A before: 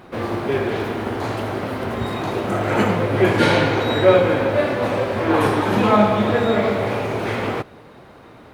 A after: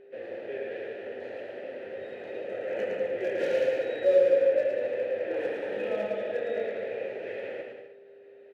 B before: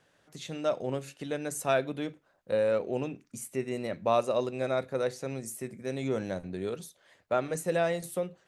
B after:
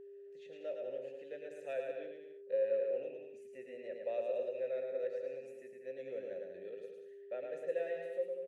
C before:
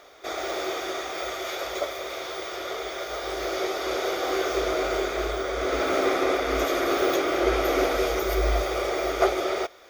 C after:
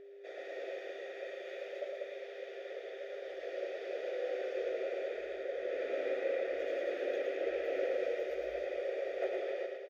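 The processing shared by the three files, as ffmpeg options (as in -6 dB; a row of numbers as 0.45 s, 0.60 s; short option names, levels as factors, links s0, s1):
-filter_complex "[0:a]asplit=3[s0][s1][s2];[s0]bandpass=f=530:t=q:w=8,volume=1[s3];[s1]bandpass=f=1840:t=q:w=8,volume=0.501[s4];[s2]bandpass=f=2480:t=q:w=8,volume=0.355[s5];[s3][s4][s5]amix=inputs=3:normalize=0,acrossover=split=810[s6][s7];[s7]volume=37.6,asoftclip=hard,volume=0.0266[s8];[s6][s8]amix=inputs=2:normalize=0,aecho=1:1:110|192.5|254.4|300.8|335.6:0.631|0.398|0.251|0.158|0.1,aeval=exprs='val(0)+0.00562*sin(2*PI*400*n/s)':c=same,volume=0.562"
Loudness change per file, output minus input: -10.5 LU, -8.5 LU, -12.0 LU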